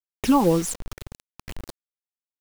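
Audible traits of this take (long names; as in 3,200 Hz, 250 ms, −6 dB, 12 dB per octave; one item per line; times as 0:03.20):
phaser sweep stages 8, 2 Hz, lowest notch 460–3,400 Hz
a quantiser's noise floor 6 bits, dither none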